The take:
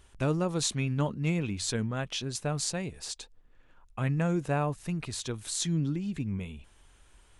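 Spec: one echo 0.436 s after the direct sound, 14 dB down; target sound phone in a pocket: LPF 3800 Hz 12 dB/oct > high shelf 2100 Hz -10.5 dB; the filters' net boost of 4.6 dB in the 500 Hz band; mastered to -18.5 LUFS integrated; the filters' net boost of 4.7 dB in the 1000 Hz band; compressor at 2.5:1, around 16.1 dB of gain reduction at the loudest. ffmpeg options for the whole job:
-af "equalizer=f=500:t=o:g=4.5,equalizer=f=1k:t=o:g=7,acompressor=threshold=-46dB:ratio=2.5,lowpass=3.8k,highshelf=f=2.1k:g=-10.5,aecho=1:1:436:0.2,volume=26dB"

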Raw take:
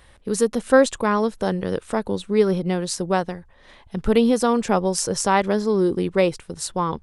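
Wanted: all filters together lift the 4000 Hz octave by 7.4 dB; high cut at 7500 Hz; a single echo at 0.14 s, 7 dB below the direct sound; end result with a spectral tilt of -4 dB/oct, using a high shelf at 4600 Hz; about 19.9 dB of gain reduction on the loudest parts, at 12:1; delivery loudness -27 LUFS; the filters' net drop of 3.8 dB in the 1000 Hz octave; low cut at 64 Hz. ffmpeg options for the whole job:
-af "highpass=64,lowpass=7.5k,equalizer=f=1k:t=o:g=-5.5,equalizer=f=4k:t=o:g=6,highshelf=f=4.6k:g=7.5,acompressor=threshold=-30dB:ratio=12,aecho=1:1:140:0.447,volume=7dB"

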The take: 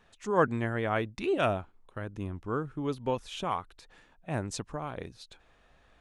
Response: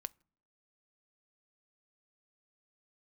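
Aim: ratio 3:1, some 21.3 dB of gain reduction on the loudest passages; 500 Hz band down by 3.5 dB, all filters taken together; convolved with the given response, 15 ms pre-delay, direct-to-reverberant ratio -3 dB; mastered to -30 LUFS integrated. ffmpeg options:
-filter_complex "[0:a]equalizer=f=500:t=o:g=-4.5,acompressor=threshold=-51dB:ratio=3,asplit=2[a][b];[1:a]atrim=start_sample=2205,adelay=15[c];[b][c]afir=irnorm=-1:irlink=0,volume=6dB[d];[a][d]amix=inputs=2:normalize=0,volume=16.5dB"

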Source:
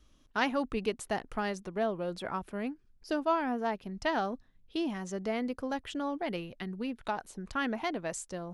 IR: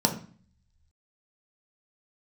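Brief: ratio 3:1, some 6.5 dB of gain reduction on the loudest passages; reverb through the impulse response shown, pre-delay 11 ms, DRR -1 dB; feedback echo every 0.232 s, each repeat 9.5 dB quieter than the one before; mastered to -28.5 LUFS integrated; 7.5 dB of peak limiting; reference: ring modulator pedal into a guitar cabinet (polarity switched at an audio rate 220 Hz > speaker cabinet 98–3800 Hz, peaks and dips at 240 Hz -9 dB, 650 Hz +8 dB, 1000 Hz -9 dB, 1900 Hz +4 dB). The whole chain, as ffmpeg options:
-filter_complex "[0:a]acompressor=threshold=-33dB:ratio=3,alimiter=level_in=5.5dB:limit=-24dB:level=0:latency=1,volume=-5.5dB,aecho=1:1:232|464|696|928:0.335|0.111|0.0365|0.012,asplit=2[a][b];[1:a]atrim=start_sample=2205,adelay=11[c];[b][c]afir=irnorm=-1:irlink=0,volume=-11dB[d];[a][d]amix=inputs=2:normalize=0,aeval=exprs='val(0)*sgn(sin(2*PI*220*n/s))':c=same,highpass=98,equalizer=f=240:t=q:w=4:g=-9,equalizer=f=650:t=q:w=4:g=8,equalizer=f=1k:t=q:w=4:g=-9,equalizer=f=1.9k:t=q:w=4:g=4,lowpass=f=3.8k:w=0.5412,lowpass=f=3.8k:w=1.3066,volume=3.5dB"

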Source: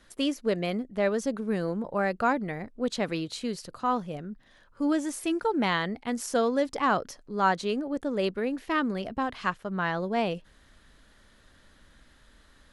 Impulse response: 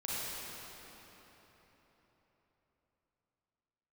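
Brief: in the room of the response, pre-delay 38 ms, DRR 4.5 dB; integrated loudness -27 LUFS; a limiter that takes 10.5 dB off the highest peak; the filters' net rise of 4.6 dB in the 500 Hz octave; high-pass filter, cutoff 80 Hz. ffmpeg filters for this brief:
-filter_complex "[0:a]highpass=80,equalizer=f=500:t=o:g=5.5,alimiter=limit=-19.5dB:level=0:latency=1,asplit=2[a][b];[1:a]atrim=start_sample=2205,adelay=38[c];[b][c]afir=irnorm=-1:irlink=0,volume=-9dB[d];[a][d]amix=inputs=2:normalize=0,volume=1.5dB"

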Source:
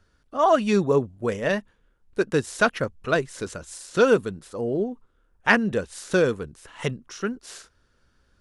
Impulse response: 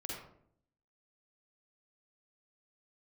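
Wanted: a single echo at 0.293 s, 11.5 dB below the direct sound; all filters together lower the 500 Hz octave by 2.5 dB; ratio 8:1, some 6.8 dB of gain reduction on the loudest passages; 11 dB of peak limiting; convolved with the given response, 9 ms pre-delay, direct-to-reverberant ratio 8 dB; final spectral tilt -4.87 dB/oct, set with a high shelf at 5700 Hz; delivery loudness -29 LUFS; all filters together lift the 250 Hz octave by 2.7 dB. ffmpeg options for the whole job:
-filter_complex "[0:a]equalizer=f=250:t=o:g=4.5,equalizer=f=500:t=o:g=-4.5,highshelf=f=5.7k:g=6.5,acompressor=threshold=-20dB:ratio=8,alimiter=limit=-19dB:level=0:latency=1,aecho=1:1:293:0.266,asplit=2[a][b];[1:a]atrim=start_sample=2205,adelay=9[c];[b][c]afir=irnorm=-1:irlink=0,volume=-7.5dB[d];[a][d]amix=inputs=2:normalize=0,volume=1dB"

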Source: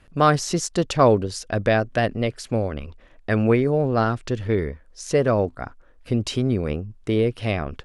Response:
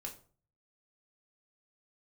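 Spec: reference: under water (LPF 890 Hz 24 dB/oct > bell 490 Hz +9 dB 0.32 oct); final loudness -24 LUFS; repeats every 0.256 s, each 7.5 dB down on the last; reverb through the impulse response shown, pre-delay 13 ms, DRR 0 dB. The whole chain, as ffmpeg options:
-filter_complex "[0:a]aecho=1:1:256|512|768|1024|1280:0.422|0.177|0.0744|0.0312|0.0131,asplit=2[a][b];[1:a]atrim=start_sample=2205,adelay=13[c];[b][c]afir=irnorm=-1:irlink=0,volume=2.5dB[d];[a][d]amix=inputs=2:normalize=0,lowpass=f=890:w=0.5412,lowpass=f=890:w=1.3066,equalizer=f=490:t=o:w=0.32:g=9,volume=-8dB"

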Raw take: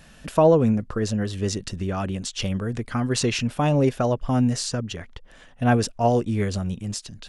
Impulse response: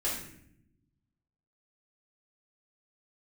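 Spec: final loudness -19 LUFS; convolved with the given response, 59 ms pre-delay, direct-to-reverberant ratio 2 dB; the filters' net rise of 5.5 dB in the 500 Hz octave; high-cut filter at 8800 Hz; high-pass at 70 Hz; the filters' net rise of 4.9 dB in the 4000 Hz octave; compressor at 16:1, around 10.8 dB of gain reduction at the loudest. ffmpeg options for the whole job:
-filter_complex "[0:a]highpass=70,lowpass=8.8k,equalizer=f=500:t=o:g=6.5,equalizer=f=4k:t=o:g=6.5,acompressor=threshold=-17dB:ratio=16,asplit=2[a][b];[1:a]atrim=start_sample=2205,adelay=59[c];[b][c]afir=irnorm=-1:irlink=0,volume=-8dB[d];[a][d]amix=inputs=2:normalize=0,volume=2.5dB"

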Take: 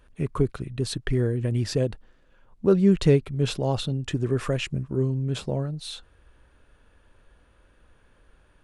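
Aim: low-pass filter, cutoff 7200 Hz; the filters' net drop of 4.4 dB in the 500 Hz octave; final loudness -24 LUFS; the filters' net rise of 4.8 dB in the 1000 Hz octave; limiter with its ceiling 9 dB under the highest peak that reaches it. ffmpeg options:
-af "lowpass=7.2k,equalizer=f=500:t=o:g=-7.5,equalizer=f=1k:t=o:g=8.5,volume=5dB,alimiter=limit=-12.5dB:level=0:latency=1"

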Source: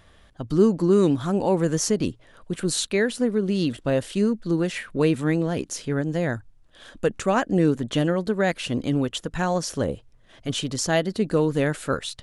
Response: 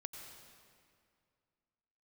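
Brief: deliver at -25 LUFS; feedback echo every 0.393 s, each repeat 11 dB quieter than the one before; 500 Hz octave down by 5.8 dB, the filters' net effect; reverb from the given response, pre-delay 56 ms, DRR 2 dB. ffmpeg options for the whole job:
-filter_complex "[0:a]equalizer=f=500:t=o:g=-7.5,aecho=1:1:393|786|1179:0.282|0.0789|0.0221,asplit=2[a][b];[1:a]atrim=start_sample=2205,adelay=56[c];[b][c]afir=irnorm=-1:irlink=0,volume=1dB[d];[a][d]amix=inputs=2:normalize=0,volume=-1dB"

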